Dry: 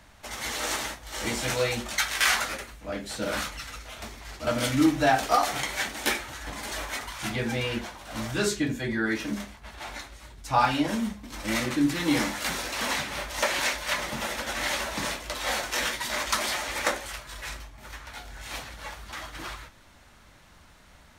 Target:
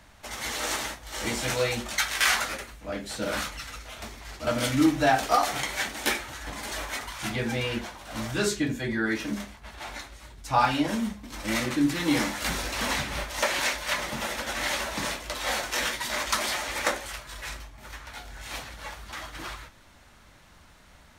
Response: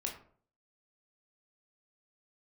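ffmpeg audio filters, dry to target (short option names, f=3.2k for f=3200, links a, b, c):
-filter_complex "[0:a]asettb=1/sr,asplit=3[a][b][c];[a]atrim=end=12.414[d];[b]atrim=start=12.41:end=13.24,asetpts=PTS-STARTPTS,afade=t=in:d=0.004:c=qsin,afade=t=out:st=0.826:d=0.004:c=qsin,lowshelf=f=140:g=10.5[e];[c]atrim=start=13.236[f];[d][e]acrossfade=d=0.004:c1=hsin:c2=qsin[g];[g][f]acrossfade=d=0.004:c1=qsin:c2=hsin"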